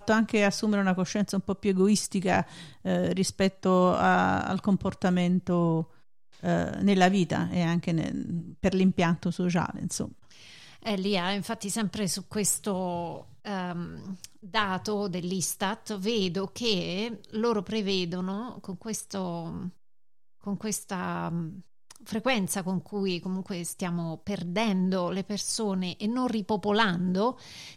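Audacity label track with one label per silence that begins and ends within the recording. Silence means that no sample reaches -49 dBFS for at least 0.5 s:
19.740000	20.410000	silence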